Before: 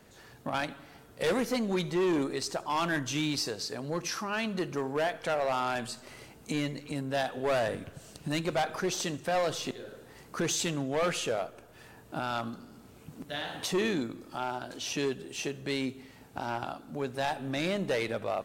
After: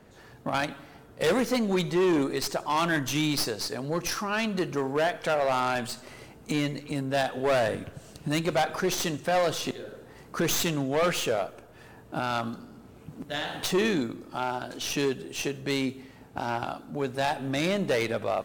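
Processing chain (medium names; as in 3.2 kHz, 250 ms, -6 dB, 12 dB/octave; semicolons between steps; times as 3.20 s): tracing distortion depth 0.055 ms; tape noise reduction on one side only decoder only; trim +4 dB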